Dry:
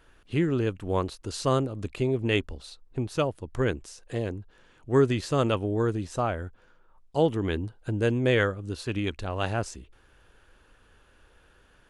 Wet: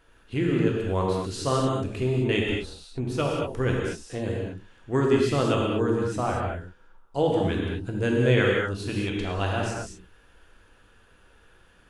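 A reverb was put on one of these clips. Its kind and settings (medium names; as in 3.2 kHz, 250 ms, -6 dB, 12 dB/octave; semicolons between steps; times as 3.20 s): gated-style reverb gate 260 ms flat, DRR -2.5 dB; trim -2 dB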